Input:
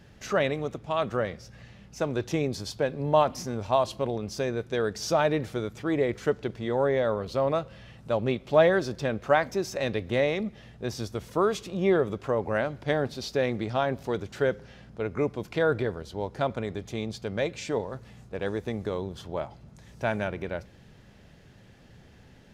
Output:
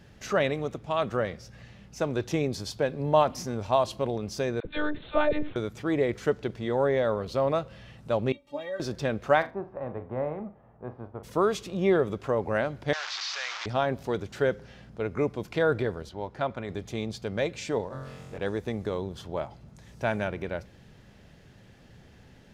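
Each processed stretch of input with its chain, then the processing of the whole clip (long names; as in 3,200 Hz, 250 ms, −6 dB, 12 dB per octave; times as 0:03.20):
0:04.60–0:05.56: high-pass filter 45 Hz + one-pitch LPC vocoder at 8 kHz 300 Hz + all-pass dispersion lows, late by 49 ms, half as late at 720 Hz
0:08.32–0:08.80: notch filter 1,500 Hz, Q 8.6 + stiff-string resonator 280 Hz, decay 0.2 s, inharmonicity 0.008
0:09.41–0:11.23: spectral envelope flattened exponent 0.6 + transistor ladder low-pass 1,200 Hz, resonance 30% + flutter between parallel walls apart 6.8 metres, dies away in 0.22 s
0:12.93–0:13.66: linear delta modulator 32 kbit/s, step −26.5 dBFS + high-pass filter 1,000 Hz 24 dB per octave + envelope flattener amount 50%
0:16.09–0:16.69: low-pass filter 1,600 Hz 6 dB per octave + tilt shelving filter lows −4.5 dB, about 800 Hz + notch filter 460 Hz, Q 8.1
0:17.88–0:18.38: downward compressor 2 to 1, threshold −40 dBFS + flutter between parallel walls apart 3.8 metres, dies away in 0.98 s
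whole clip: no processing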